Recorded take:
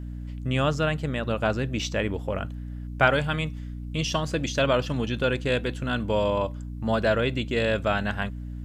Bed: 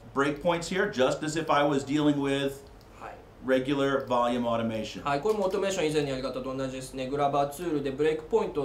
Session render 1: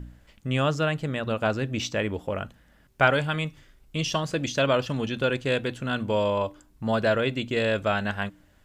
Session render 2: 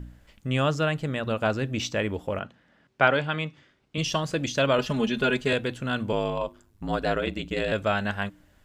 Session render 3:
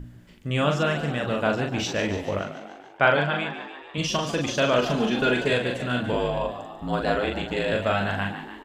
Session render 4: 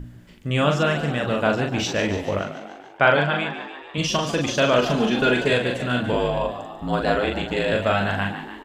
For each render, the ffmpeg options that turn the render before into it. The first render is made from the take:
ffmpeg -i in.wav -af "bandreject=frequency=60:width_type=h:width=4,bandreject=frequency=120:width_type=h:width=4,bandreject=frequency=180:width_type=h:width=4,bandreject=frequency=240:width_type=h:width=4,bandreject=frequency=300:width_type=h:width=4" out.wav
ffmpeg -i in.wav -filter_complex "[0:a]asettb=1/sr,asplit=3[link_01][link_02][link_03];[link_01]atrim=end=2.394[link_04];[link_02]atrim=start=2.39:end=3.98,asetpts=PTS-STARTPTS,afade=type=in:duration=0.004:curve=qsin,afade=type=out:start_time=1.586:duration=0.004:curve=qsin,highpass=150,lowpass=4500[link_05];[link_03]atrim=start=3.976[link_06];[link_04][link_05]acrossfade=duration=0.004:curve1=hsin:curve2=qsin[link_07];[link_07][link_06]acrossfade=duration=0.004:curve1=qsin:curve2=hsin,asettb=1/sr,asplit=3[link_08][link_09][link_10];[link_08]atrim=end=4.784[link_11];[link_09]atrim=start=4.78:end=5.53,asetpts=PTS-STARTPTS,afade=type=in:duration=0.004:curve=qsin,afade=type=out:start_time=0.746:duration=0.004:curve=qsin,aecho=1:1:4.8:0.95,atrim=end_sample=33075[link_12];[link_10]atrim=start=5.526[link_13];[link_11][link_12]acrossfade=duration=0.004:curve1=hsin:curve2=qsin[link_14];[link_14][link_13]acrossfade=duration=0.004:curve1=qsin:curve2=hsin,asettb=1/sr,asplit=3[link_15][link_16][link_17];[link_15]atrim=end=6.124[link_18];[link_16]atrim=start=6.12:end=7.72,asetpts=PTS-STARTPTS,afade=type=in:duration=0.004:curve=qsin,afade=type=out:start_time=1.596:duration=0.004:curve=qsin,aeval=exprs='val(0)*sin(2*PI*52*n/s)':channel_layout=same[link_19];[link_17]atrim=start=7.716[link_20];[link_18][link_19]acrossfade=duration=0.004:curve1=hsin:curve2=qsin[link_21];[link_21][link_20]acrossfade=duration=0.004:curve1=qsin:curve2=hsin" out.wav
ffmpeg -i in.wav -filter_complex "[0:a]asplit=2[link_01][link_02];[link_02]adelay=41,volume=-3.5dB[link_03];[link_01][link_03]amix=inputs=2:normalize=0,asplit=8[link_04][link_05][link_06][link_07][link_08][link_09][link_10][link_11];[link_05]adelay=144,afreqshift=59,volume=-11dB[link_12];[link_06]adelay=288,afreqshift=118,volume=-15.3dB[link_13];[link_07]adelay=432,afreqshift=177,volume=-19.6dB[link_14];[link_08]adelay=576,afreqshift=236,volume=-23.9dB[link_15];[link_09]adelay=720,afreqshift=295,volume=-28.2dB[link_16];[link_10]adelay=864,afreqshift=354,volume=-32.5dB[link_17];[link_11]adelay=1008,afreqshift=413,volume=-36.8dB[link_18];[link_04][link_12][link_13][link_14][link_15][link_16][link_17][link_18]amix=inputs=8:normalize=0" out.wav
ffmpeg -i in.wav -af "volume=3dB,alimiter=limit=-2dB:level=0:latency=1" out.wav

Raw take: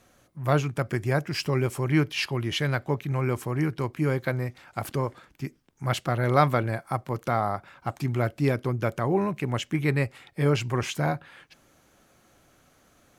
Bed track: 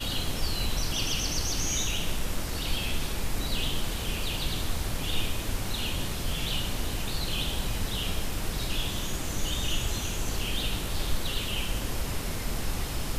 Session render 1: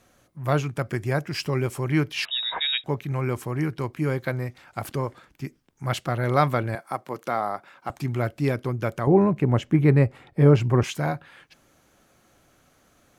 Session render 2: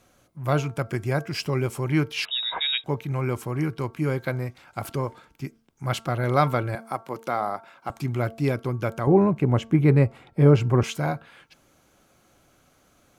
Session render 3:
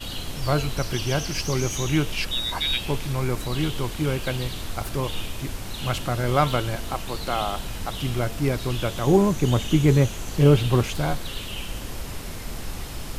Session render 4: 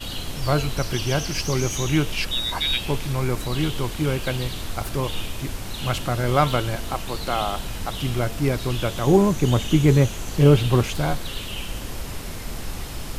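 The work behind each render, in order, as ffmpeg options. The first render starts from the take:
ffmpeg -i in.wav -filter_complex "[0:a]asettb=1/sr,asplit=3[link_01][link_02][link_03];[link_01]atrim=end=2.254[link_04];[link_02]atrim=start=2.25:end=2.84,asetpts=PTS-STARTPTS,afade=type=in:duration=0.004:curve=qsin,afade=type=out:start_time=0.586:duration=0.004:curve=qsin,lowpass=frequency=3300:width_type=q:width=0.5098,lowpass=frequency=3300:width_type=q:width=0.6013,lowpass=frequency=3300:width_type=q:width=0.9,lowpass=frequency=3300:width_type=q:width=2.563,afreqshift=-3900[link_05];[link_03]atrim=start=2.836[link_06];[link_04][link_05]acrossfade=duration=0.004:curve1=hsin:curve2=qsin[link_07];[link_07][link_06]acrossfade=duration=0.004:curve1=qsin:curve2=hsin,asettb=1/sr,asplit=3[link_08][link_09][link_10];[link_08]atrim=end=6.754[link_11];[link_09]atrim=start=6.75:end=7.9,asetpts=PTS-STARTPTS,afade=type=in:duration=0.004:curve=qsin,afade=type=out:start_time=1.146:duration=0.004:curve=qsin,highpass=240[link_12];[link_10]atrim=start=7.896[link_13];[link_11][link_12]acrossfade=duration=0.004:curve1=hsin:curve2=qsin[link_14];[link_14][link_13]acrossfade=duration=0.004:curve1=qsin:curve2=hsin,asettb=1/sr,asplit=3[link_15][link_16][link_17];[link_15]atrim=end=9.074[link_18];[link_16]atrim=start=9.07:end=10.84,asetpts=PTS-STARTPTS,afade=type=in:duration=0.004:curve=qsin,afade=type=out:start_time=1.766:duration=0.004:curve=qsin,tiltshelf=frequency=1500:gain=8[link_19];[link_17]atrim=start=10.836[link_20];[link_18][link_19]acrossfade=duration=0.004:curve1=hsin:curve2=qsin[link_21];[link_21][link_20]acrossfade=duration=0.004:curve1=qsin:curve2=hsin" out.wav
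ffmpeg -i in.wav -af "bandreject=frequency=1800:width=11,bandreject=frequency=225.9:width_type=h:width=4,bandreject=frequency=451.8:width_type=h:width=4,bandreject=frequency=677.7:width_type=h:width=4,bandreject=frequency=903.6:width_type=h:width=4,bandreject=frequency=1129.5:width_type=h:width=4,bandreject=frequency=1355.4:width_type=h:width=4,bandreject=frequency=1581.3:width_type=h:width=4" out.wav
ffmpeg -i in.wav -i bed.wav -filter_complex "[1:a]volume=-2dB[link_01];[0:a][link_01]amix=inputs=2:normalize=0" out.wav
ffmpeg -i in.wav -af "volume=1.5dB" out.wav

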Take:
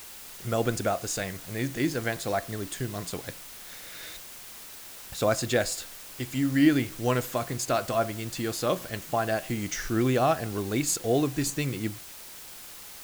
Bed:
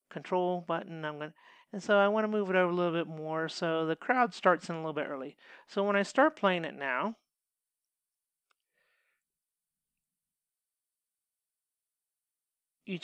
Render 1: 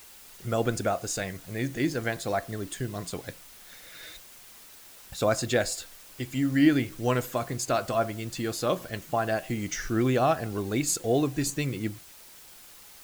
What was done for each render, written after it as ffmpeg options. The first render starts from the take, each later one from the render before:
ffmpeg -i in.wav -af "afftdn=noise_reduction=6:noise_floor=-44" out.wav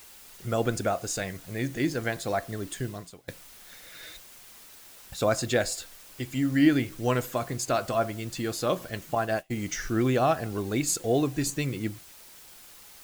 ffmpeg -i in.wav -filter_complex "[0:a]asettb=1/sr,asplit=3[link_01][link_02][link_03];[link_01]atrim=end=9.154[link_04];[link_02]atrim=start=9.15:end=9.56,asetpts=PTS-STARTPTS,afade=type=in:duration=0.004:curve=qsin,afade=type=out:start_time=0.406:duration=0.004:curve=qsin,agate=range=-33dB:threshold=-29dB:ratio=3:release=100:detection=peak[link_05];[link_03]atrim=start=9.556[link_06];[link_04][link_05]acrossfade=duration=0.004:curve1=hsin:curve2=qsin[link_07];[link_07][link_06]acrossfade=duration=0.004:curve1=qsin:curve2=hsin,asplit=2[link_08][link_09];[link_08]atrim=end=3.28,asetpts=PTS-STARTPTS,afade=type=out:start_time=2.88:duration=0.4:curve=qua:silence=0.112202[link_10];[link_09]atrim=start=3.28,asetpts=PTS-STARTPTS,afade=type=in:duration=0.004:curve=hsin:silence=0.112202[link_11];[link_10][link_11]concat=n=2:v=0:a=1" out.wav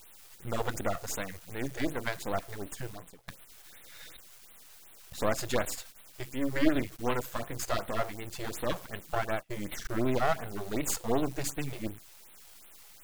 ffmpeg -i in.wav -af "aeval=exprs='max(val(0),0)':channel_layout=same,afftfilt=real='re*(1-between(b*sr/1024,210*pow(6200/210,0.5+0.5*sin(2*PI*2.7*pts/sr))/1.41,210*pow(6200/210,0.5+0.5*sin(2*PI*2.7*pts/sr))*1.41))':imag='im*(1-between(b*sr/1024,210*pow(6200/210,0.5+0.5*sin(2*PI*2.7*pts/sr))/1.41,210*pow(6200/210,0.5+0.5*sin(2*PI*2.7*pts/sr))*1.41))':win_size=1024:overlap=0.75" out.wav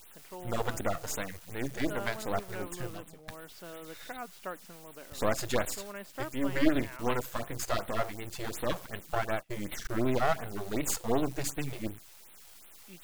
ffmpeg -i in.wav -i bed.wav -filter_complex "[1:a]volume=-15dB[link_01];[0:a][link_01]amix=inputs=2:normalize=0" out.wav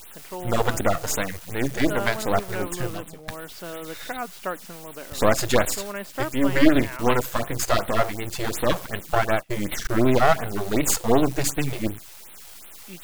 ffmpeg -i in.wav -af "volume=10dB,alimiter=limit=-2dB:level=0:latency=1" out.wav

